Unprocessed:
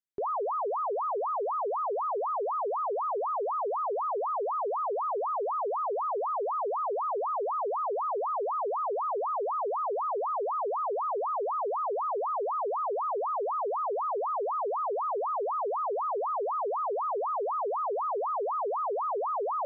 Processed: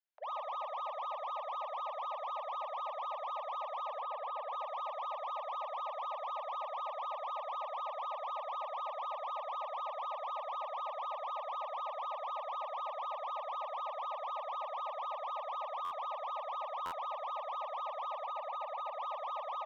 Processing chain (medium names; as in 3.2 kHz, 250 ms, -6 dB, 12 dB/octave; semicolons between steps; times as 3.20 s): steep high-pass 590 Hz 96 dB/octave; 18.26–18.90 s: comb 1.4 ms, depth 80%; peak limiter -32 dBFS, peak gain reduction 10.5 dB; 3.87–4.53 s: overdrive pedal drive 17 dB, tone 1.2 kHz, clips at -32 dBFS; saturation -37.5 dBFS, distortion -15 dB; distance through air 180 m; multi-tap echo 57/144 ms -4.5/-6 dB; FDN reverb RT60 0.38 s, high-frequency decay 0.65×, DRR 16 dB; buffer glitch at 15.84/16.85 s, samples 512, times 5